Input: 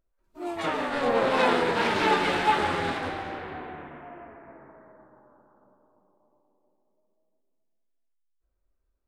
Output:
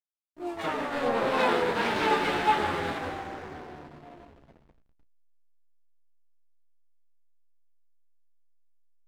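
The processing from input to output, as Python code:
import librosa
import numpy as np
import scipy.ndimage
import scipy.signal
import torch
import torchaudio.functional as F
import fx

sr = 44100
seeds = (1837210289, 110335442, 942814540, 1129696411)

y = fx.backlash(x, sr, play_db=-38.5)
y = fx.room_early_taps(y, sr, ms=(14, 34), db=(-11.5, -15.5))
y = y * librosa.db_to_amplitude(-2.5)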